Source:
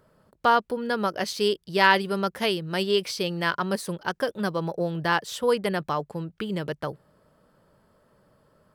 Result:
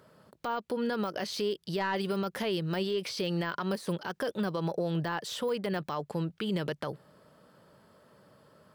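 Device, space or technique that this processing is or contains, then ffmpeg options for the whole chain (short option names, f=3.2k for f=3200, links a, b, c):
broadcast voice chain: -af "highpass=100,deesser=0.95,acompressor=threshold=-28dB:ratio=3,equalizer=f=3.8k:t=o:w=1.6:g=4,alimiter=level_in=1.5dB:limit=-24dB:level=0:latency=1:release=62,volume=-1.5dB,volume=2.5dB"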